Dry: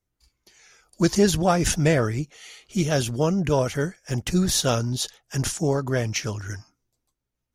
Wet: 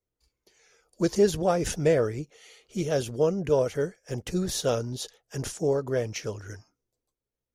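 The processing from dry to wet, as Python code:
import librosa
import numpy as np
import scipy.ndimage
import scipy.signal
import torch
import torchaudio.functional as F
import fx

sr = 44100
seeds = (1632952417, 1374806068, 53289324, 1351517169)

y = fx.peak_eq(x, sr, hz=470.0, db=11.0, octaves=0.77)
y = y * librosa.db_to_amplitude(-8.5)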